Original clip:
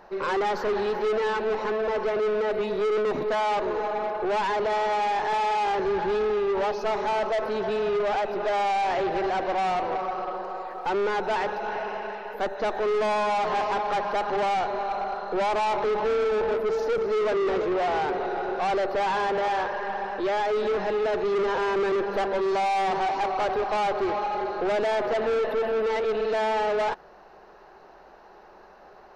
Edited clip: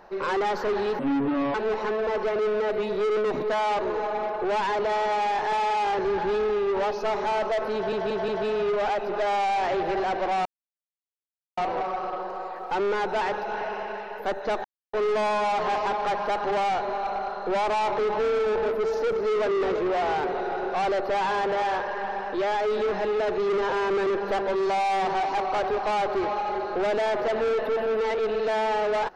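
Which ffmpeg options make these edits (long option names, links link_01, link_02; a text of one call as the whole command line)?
ffmpeg -i in.wav -filter_complex "[0:a]asplit=8[link_01][link_02][link_03][link_04][link_05][link_06][link_07][link_08];[link_01]atrim=end=0.994[link_09];[link_02]atrim=start=0.99:end=1.35,asetpts=PTS-STARTPTS,asetrate=28665,aresample=44100[link_10];[link_03]atrim=start=1.346:end=7.732[link_11];[link_04]atrim=start=7.548:end=7.732[link_12];[link_05]atrim=start=7.548:end=7.732[link_13];[link_06]atrim=start=7.548:end=9.72,asetpts=PTS-STARTPTS,afade=type=out:start_time=2.168:duration=0.004:curve=hsin,apad=pad_dur=1.12[link_14];[link_07]atrim=start=9.72:end=12.79,asetpts=PTS-STARTPTS,afade=type=in:duration=0.004:curve=hsin,afade=type=out:start_time=3.066:duration=0.004:curve=hsin,apad=pad_dur=0.29[link_15];[link_08]atrim=start=12.79,asetpts=PTS-STARTPTS,afade=type=in:duration=0.004:curve=hsin[link_16];[link_09][link_10]acrossfade=duration=0.004:curve1=hsin:curve2=hsin[link_17];[link_17][link_11]acrossfade=duration=0.004:curve1=hsin:curve2=hsin[link_18];[link_18][link_12]acrossfade=duration=0.004:curve1=hsin:curve2=hsin[link_19];[link_19][link_13]acrossfade=duration=0.004:curve1=hsin:curve2=hsin[link_20];[link_14][link_15][link_16]concat=n=3:v=0:a=1[link_21];[link_20][link_21]acrossfade=duration=0.004:curve1=hsin:curve2=hsin" out.wav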